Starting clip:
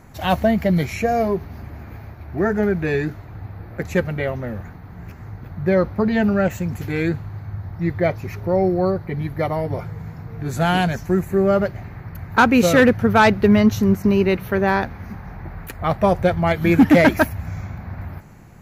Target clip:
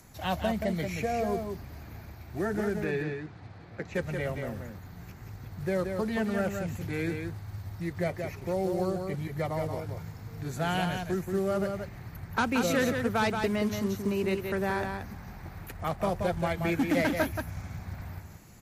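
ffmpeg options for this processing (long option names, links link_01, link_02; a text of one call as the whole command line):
ffmpeg -i in.wav -filter_complex "[0:a]acrossover=split=250|3000[link_01][link_02][link_03];[link_02]acompressor=threshold=-19dB:ratio=2[link_04];[link_01][link_04][link_03]amix=inputs=3:normalize=0,acrossover=split=300|3400[link_05][link_06][link_07];[link_05]alimiter=limit=-20.5dB:level=0:latency=1:release=79[link_08];[link_07]acompressor=mode=upward:threshold=-42dB:ratio=2.5[link_09];[link_08][link_06][link_09]amix=inputs=3:normalize=0,acrusher=bits=6:mode=log:mix=0:aa=0.000001,asplit=3[link_10][link_11][link_12];[link_10]afade=type=out:start_time=2.84:duration=0.02[link_13];[link_11]highpass=110,lowpass=4500,afade=type=in:start_time=2.84:duration=0.02,afade=type=out:start_time=3.93:duration=0.02[link_14];[link_12]afade=type=in:start_time=3.93:duration=0.02[link_15];[link_13][link_14][link_15]amix=inputs=3:normalize=0,aecho=1:1:178:0.531,volume=-9dB" -ar 44100 -c:a libmp3lame -b:a 56k out.mp3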